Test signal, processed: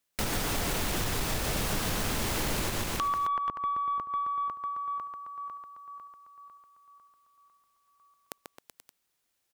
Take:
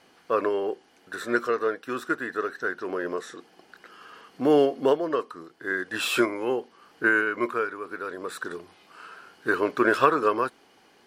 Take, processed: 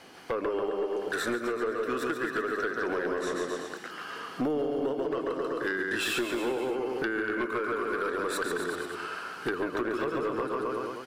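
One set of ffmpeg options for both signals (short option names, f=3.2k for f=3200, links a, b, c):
-filter_complex "[0:a]acrossover=split=470[a][b];[b]acompressor=threshold=-28dB:ratio=6[c];[a][c]amix=inputs=2:normalize=0,asplit=2[d][e];[e]aecho=0:1:140|266|379.4|481.5|573.3:0.631|0.398|0.251|0.158|0.1[f];[d][f]amix=inputs=2:normalize=0,acompressor=threshold=-32dB:ratio=12,aeval=exprs='0.237*(cos(1*acos(clip(val(0)/0.237,-1,1)))-cos(1*PI/2))+0.0596*(cos(3*acos(clip(val(0)/0.237,-1,1)))-cos(3*PI/2))+0.0266*(cos(4*acos(clip(val(0)/0.237,-1,1)))-cos(4*PI/2))+0.0841*(cos(7*acos(clip(val(0)/0.237,-1,1)))-cos(7*PI/2))':c=same"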